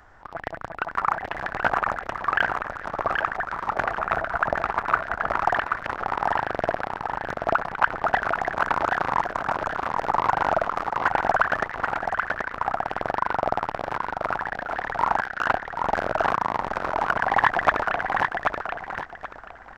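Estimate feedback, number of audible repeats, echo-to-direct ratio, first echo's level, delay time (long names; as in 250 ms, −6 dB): 25%, 3, −4.0 dB, −4.5 dB, 781 ms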